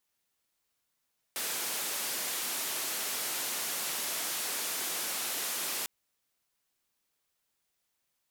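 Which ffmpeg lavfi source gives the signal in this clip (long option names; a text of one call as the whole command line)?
ffmpeg -f lavfi -i "anoisesrc=color=white:duration=4.5:sample_rate=44100:seed=1,highpass=frequency=240,lowpass=frequency=15000,volume=-27.9dB" out.wav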